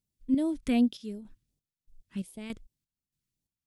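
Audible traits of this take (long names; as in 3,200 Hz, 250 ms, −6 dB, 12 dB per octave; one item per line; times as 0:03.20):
chopped level 1.6 Hz, depth 65%, duty 55%
phaser sweep stages 2, 2.7 Hz, lowest notch 690–1,400 Hz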